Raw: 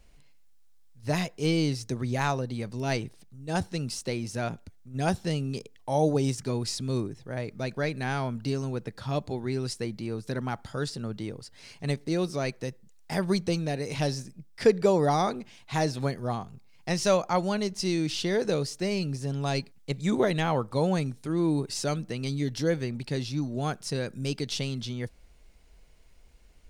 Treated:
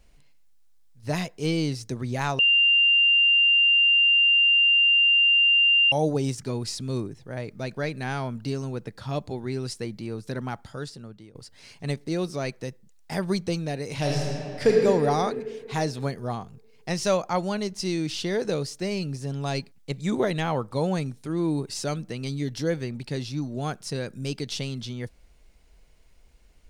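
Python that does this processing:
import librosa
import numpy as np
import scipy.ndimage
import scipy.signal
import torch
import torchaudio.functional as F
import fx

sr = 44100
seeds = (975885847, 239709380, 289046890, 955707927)

y = fx.reverb_throw(x, sr, start_s=13.93, length_s=0.79, rt60_s=2.6, drr_db=-2.0)
y = fx.edit(y, sr, fx.bleep(start_s=2.39, length_s=3.53, hz=2790.0, db=-15.5),
    fx.fade_out_to(start_s=10.46, length_s=0.89, floor_db=-18.0), tone=tone)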